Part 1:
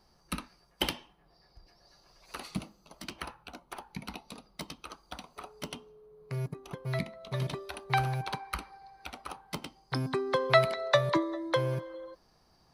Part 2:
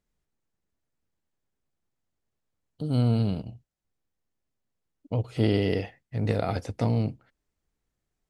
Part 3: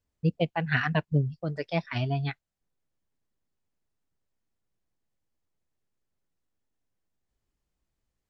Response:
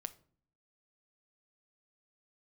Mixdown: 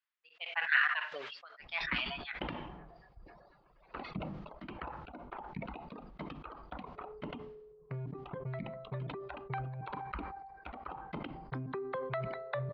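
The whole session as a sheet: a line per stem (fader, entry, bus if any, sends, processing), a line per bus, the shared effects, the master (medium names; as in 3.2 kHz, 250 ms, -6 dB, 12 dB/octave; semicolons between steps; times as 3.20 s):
-3.0 dB, 1.60 s, send -6.5 dB, reverb removal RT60 1.1 s; low-pass 1.7 kHz 12 dB/octave; compression 5:1, threshold -37 dBFS, peak gain reduction 17 dB
mute
-4.5 dB, 0.00 s, send -10.5 dB, high-pass 1.1 kHz 24 dB/octave; peaking EQ 1.7 kHz +5 dB 2.1 oct; tremolo of two beating tones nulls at 1.6 Hz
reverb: on, RT60 0.50 s, pre-delay 6 ms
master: low-pass 4 kHz 24 dB/octave; decay stretcher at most 38 dB/s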